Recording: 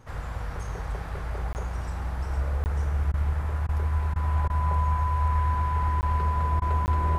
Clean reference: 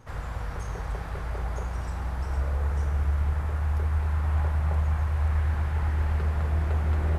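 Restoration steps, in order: band-stop 1 kHz, Q 30; interpolate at 1.53/2.64/6.01/6.86 s, 19 ms; interpolate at 3.12/3.67/4.14/4.48/6.60 s, 17 ms

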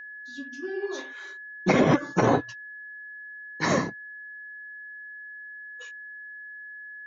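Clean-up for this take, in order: band-stop 1.7 kHz, Q 30

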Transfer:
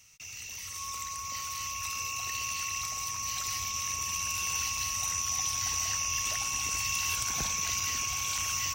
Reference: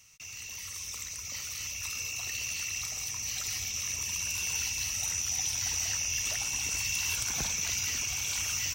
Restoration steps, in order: band-stop 1.1 kHz, Q 30; interpolate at 3.16/4.77/7.80/8.38 s, 3 ms

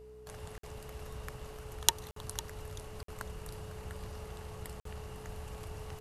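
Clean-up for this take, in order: de-hum 62.8 Hz, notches 11; band-stop 430 Hz, Q 30; interpolate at 0.58/2.11/3.03/4.80 s, 53 ms; inverse comb 502 ms -14.5 dB

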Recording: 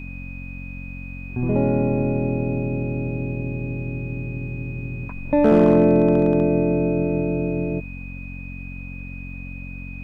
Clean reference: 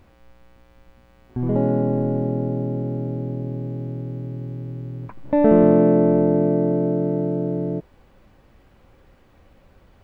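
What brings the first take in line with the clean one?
clip repair -8 dBFS; de-hum 45.3 Hz, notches 6; band-stop 2.5 kHz, Q 30

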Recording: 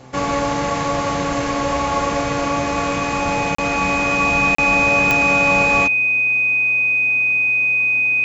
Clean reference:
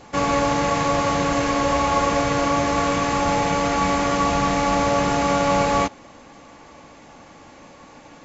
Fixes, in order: de-click; de-hum 129.4 Hz, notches 6; band-stop 2.5 kHz, Q 30; interpolate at 3.55/4.55 s, 34 ms

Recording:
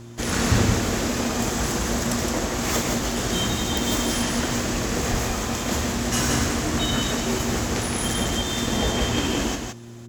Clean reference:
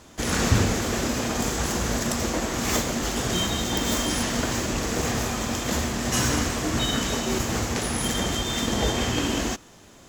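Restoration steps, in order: de-hum 117.4 Hz, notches 3; de-plosive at 5.10 s; inverse comb 167 ms -5 dB

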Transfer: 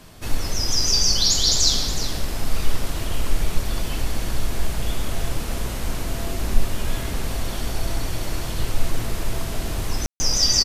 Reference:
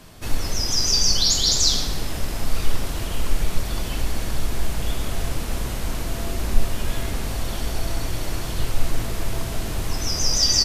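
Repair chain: room tone fill 10.06–10.20 s; inverse comb 367 ms -11.5 dB

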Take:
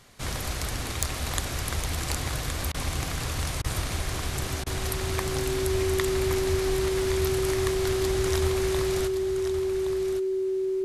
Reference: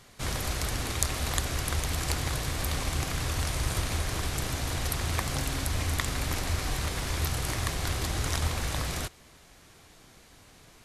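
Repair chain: clip repair -7.5 dBFS; band-stop 380 Hz, Q 30; interpolate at 2.72/3.62/4.64 s, 22 ms; inverse comb 1119 ms -9 dB

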